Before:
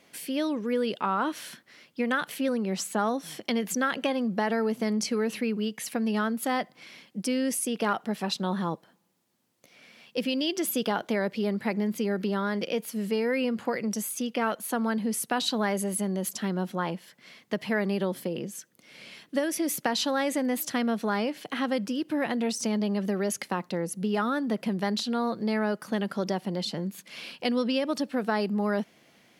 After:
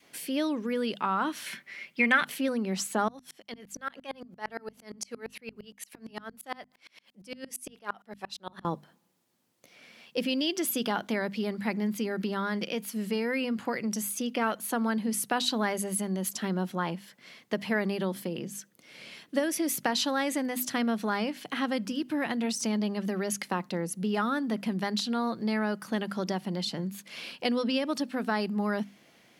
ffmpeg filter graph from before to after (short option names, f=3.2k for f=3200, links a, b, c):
-filter_complex "[0:a]asettb=1/sr,asplit=3[a][b][c];[a]atrim=end=1.464[d];[b]atrim=start=1.46:end=2.25,asetpts=PTS-STARTPTS,afade=t=in:d=0.004:c=qsin,afade=t=out:st=0.786:d=0.004:c=qsin,equalizer=f=2.2k:t=o:w=0.57:g=14.5,aecho=1:1:5.1:0.37,atrim=end_sample=34839[e];[c]atrim=start=2.246[f];[d][e]acrossfade=d=0.004:c1=hsin:c2=qsin[g];[g][f]acrossfade=d=0.004:c1=qsin:c2=hsin,asettb=1/sr,asplit=3[h][i][j];[h]atrim=end=3.084[k];[i]atrim=start=3.08:end=8.65,asetpts=PTS-STARTPTS,afade=t=in:d=0.004:c=qsin,afade=t=out:st=5.566:d=0.004:c=qsin,highpass=f=600:p=1,acompressor=mode=upward:threshold=-42dB:ratio=2.5:attack=3.2:release=140:knee=2.83:detection=peak,aeval=exprs='val(0)*pow(10,-35*if(lt(mod(-8.7*n/s,1),2*abs(-8.7)/1000),1-mod(-8.7*n/s,1)/(2*abs(-8.7)/1000),(mod(-8.7*n/s,1)-2*abs(-8.7)/1000)/(1-2*abs(-8.7)/1000))/20)':c=same[l];[j]atrim=start=8.646[m];[k][l]acrossfade=d=0.004:c1=hsin:c2=qsin[n];[n][m]acrossfade=d=0.004:c1=qsin:c2=hsin,bandreject=f=50:t=h:w=6,bandreject=f=100:t=h:w=6,bandreject=f=150:t=h:w=6,bandreject=f=200:t=h:w=6,bandreject=f=250:t=h:w=6,adynamicequalizer=threshold=0.00708:dfrequency=510:dqfactor=1.4:tfrequency=510:tqfactor=1.4:attack=5:release=100:ratio=0.375:range=3:mode=cutabove:tftype=bell"